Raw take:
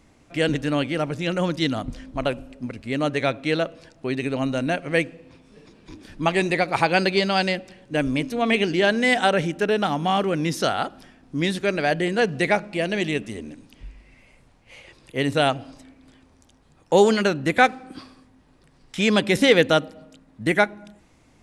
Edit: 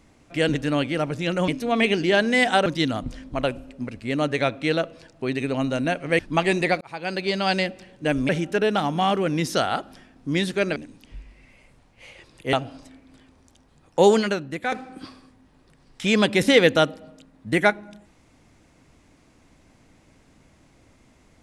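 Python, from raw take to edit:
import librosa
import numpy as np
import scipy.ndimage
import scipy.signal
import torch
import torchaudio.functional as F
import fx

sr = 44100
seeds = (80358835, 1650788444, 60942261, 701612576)

y = fx.edit(x, sr, fx.cut(start_s=5.01, length_s=1.07),
    fx.fade_in_span(start_s=6.7, length_s=0.77),
    fx.move(start_s=8.18, length_s=1.18, to_s=1.48),
    fx.cut(start_s=11.83, length_s=1.62),
    fx.cut(start_s=15.22, length_s=0.25),
    fx.fade_out_to(start_s=17.08, length_s=0.58, curve='qua', floor_db=-10.5), tone=tone)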